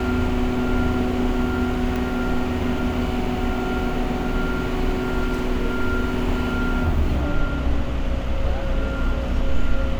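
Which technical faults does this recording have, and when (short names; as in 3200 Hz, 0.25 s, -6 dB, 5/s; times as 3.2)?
1.96 pop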